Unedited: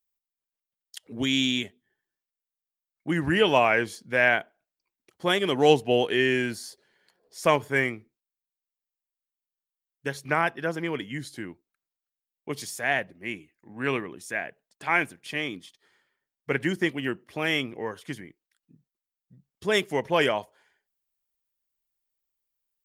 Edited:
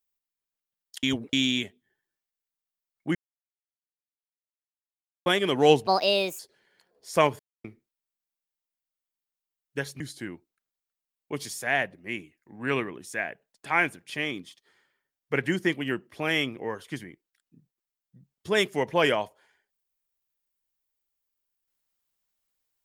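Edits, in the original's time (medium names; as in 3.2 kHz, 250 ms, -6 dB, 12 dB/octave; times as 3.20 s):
1.03–1.33 s: reverse
3.15–5.26 s: mute
5.87–6.68 s: speed 155%
7.68–7.93 s: mute
10.29–11.17 s: delete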